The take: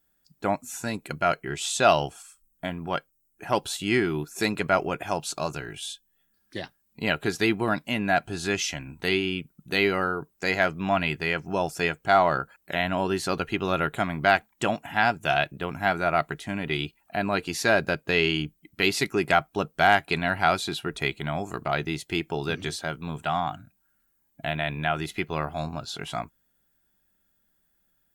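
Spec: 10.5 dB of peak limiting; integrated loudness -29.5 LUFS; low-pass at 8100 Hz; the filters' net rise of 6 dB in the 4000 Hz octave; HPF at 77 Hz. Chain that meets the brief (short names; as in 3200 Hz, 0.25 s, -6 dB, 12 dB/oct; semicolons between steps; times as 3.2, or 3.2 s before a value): HPF 77 Hz; LPF 8100 Hz; bell 4000 Hz +8 dB; gain -2 dB; limiter -14.5 dBFS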